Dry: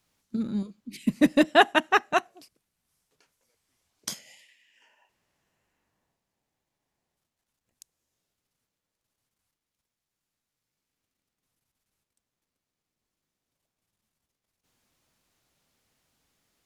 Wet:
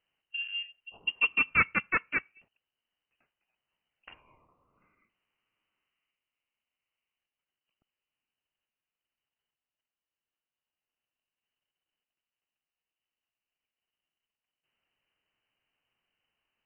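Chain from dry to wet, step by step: inverted band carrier 3000 Hz; gain -7 dB

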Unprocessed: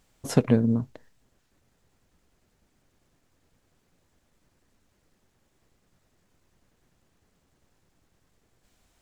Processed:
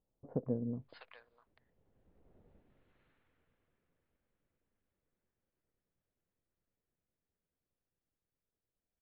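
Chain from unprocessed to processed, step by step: Wiener smoothing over 9 samples; Doppler pass-by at 2.41, 11 m/s, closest 2.1 m; brick-wall FIR low-pass 5000 Hz; bell 490 Hz +4.5 dB 0.61 oct; bands offset in time lows, highs 0.65 s, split 1000 Hz; gain +4 dB

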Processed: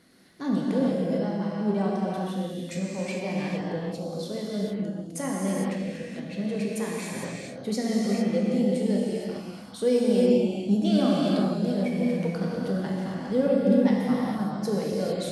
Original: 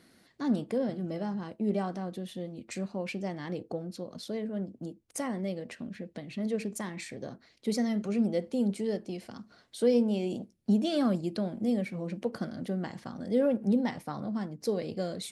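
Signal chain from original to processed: non-linear reverb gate 0.48 s flat, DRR -4.5 dB

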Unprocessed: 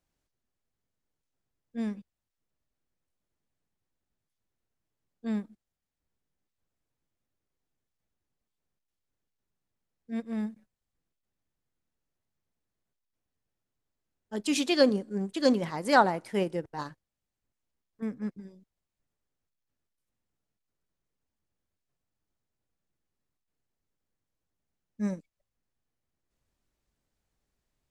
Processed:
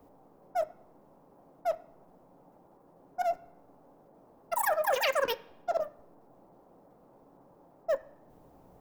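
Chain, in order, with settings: tone controls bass +12 dB, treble +12 dB; reverse; compressor 6:1, threshold -33 dBFS, peak gain reduction 18 dB; reverse; wide varispeed 3.17×; band noise 130–870 Hz -67 dBFS; on a send: reverb, pre-delay 3 ms, DRR 10.5 dB; on the sum: gain +7 dB

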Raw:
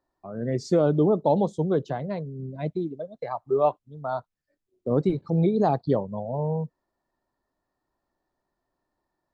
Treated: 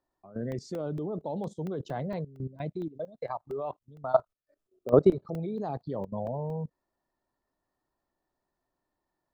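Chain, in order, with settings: 4.13–5.4 thirty-one-band EQ 400 Hz +8 dB, 630 Hz +12 dB, 1250 Hz +10 dB, 2000 Hz -3 dB; level quantiser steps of 17 dB; crackling interface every 0.23 s, samples 64, zero, from 0.52; gain +1 dB

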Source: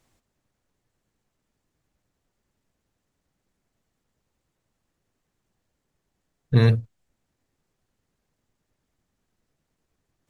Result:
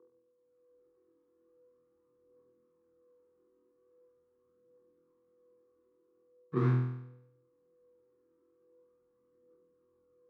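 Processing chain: median filter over 41 samples; AGC gain up to 14 dB; whine 480 Hz -44 dBFS; phaser 0.42 Hz, delay 3.3 ms, feedback 45%; in parallel at -10 dB: bit-crush 6-bit; on the sum: double band-pass 610 Hz, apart 1.7 oct; frequency shift +14 Hz; on a send: flutter echo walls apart 4.1 m, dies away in 0.78 s; on the sum: gain -4.5 dB

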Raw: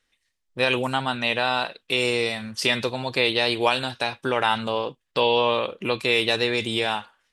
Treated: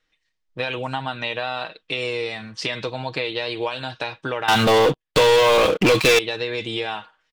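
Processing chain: Bessel low-pass 5100 Hz, order 4; comb 6.4 ms, depth 49%; compressor, threshold -22 dBFS, peak gain reduction 9 dB; 4.48–6.19 sample leveller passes 5

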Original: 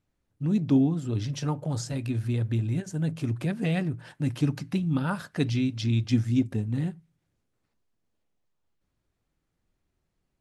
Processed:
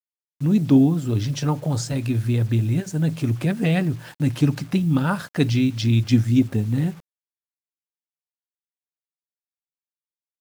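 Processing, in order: bit-crush 9-bit; gain +6.5 dB

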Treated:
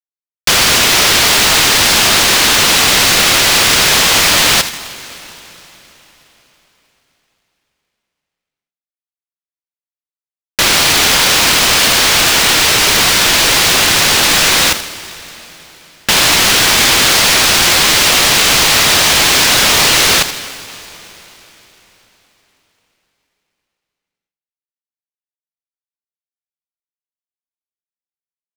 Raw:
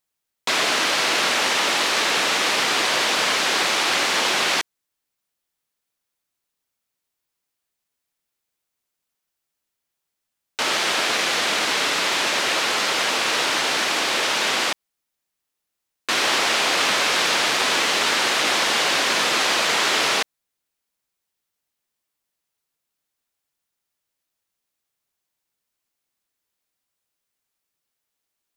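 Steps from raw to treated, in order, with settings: level-crossing sampler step -23.5 dBFS; tilt +3.5 dB/oct; compressor, threshold -20 dBFS, peak gain reduction 9 dB; feedback echo 79 ms, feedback 52%, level -17 dB; sample leveller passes 5; weighting filter A; plate-style reverb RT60 4.4 s, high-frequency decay 0.85×, pre-delay 0.115 s, DRR 15.5 dB; polarity switched at an audio rate 940 Hz; gain +1 dB

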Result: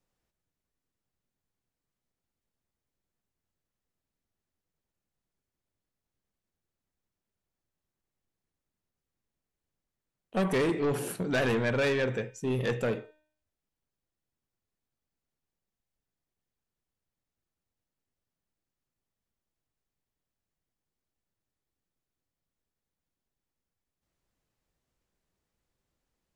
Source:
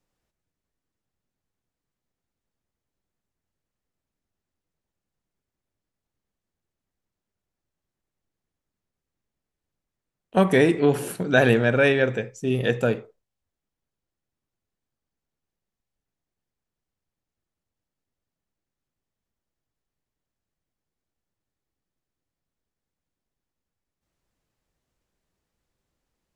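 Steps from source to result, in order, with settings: de-hum 306.4 Hz, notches 16; soft clip -20 dBFS, distortion -8 dB; gain -3 dB

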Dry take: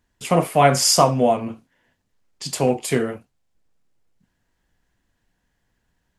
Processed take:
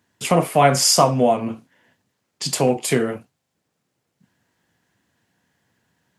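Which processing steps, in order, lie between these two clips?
HPF 100 Hz 24 dB/oct; in parallel at +3 dB: compressor, threshold -26 dBFS, peak gain reduction 16 dB; on the sum: gain -2 dB

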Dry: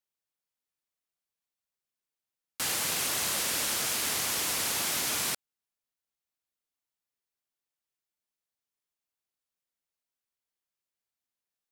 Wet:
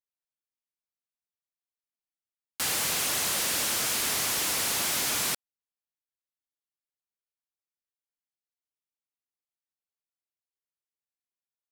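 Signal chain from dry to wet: sample leveller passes 3; gain -5 dB

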